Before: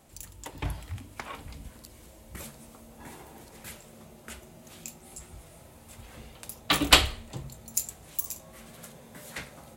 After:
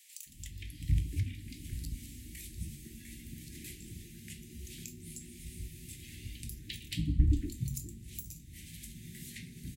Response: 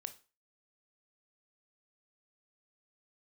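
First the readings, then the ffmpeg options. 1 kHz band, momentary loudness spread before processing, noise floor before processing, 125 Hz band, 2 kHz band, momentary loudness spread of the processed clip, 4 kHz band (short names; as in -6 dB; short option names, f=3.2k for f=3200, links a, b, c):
under -40 dB, 22 LU, -52 dBFS, +5.0 dB, -19.0 dB, 15 LU, -19.0 dB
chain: -filter_complex "[0:a]acrossover=split=260[a][b];[b]acompressor=threshold=-51dB:ratio=4[c];[a][c]amix=inputs=2:normalize=0,asuperstop=centerf=820:order=12:qfactor=0.54,acrossover=split=260|1400[d][e][f];[d]adelay=260[g];[e]adelay=500[h];[g][h][f]amix=inputs=3:normalize=0[i];[1:a]atrim=start_sample=2205,asetrate=70560,aresample=44100[j];[i][j]afir=irnorm=-1:irlink=0,volume=13.5dB"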